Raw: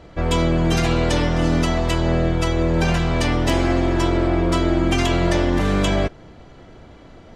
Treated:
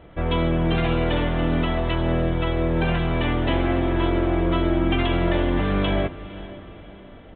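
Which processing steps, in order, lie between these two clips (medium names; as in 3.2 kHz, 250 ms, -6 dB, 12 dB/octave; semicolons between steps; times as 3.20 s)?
resampled via 8 kHz; short-mantissa float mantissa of 8-bit; echo that smears into a reverb 507 ms, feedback 44%, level -16 dB; trim -3 dB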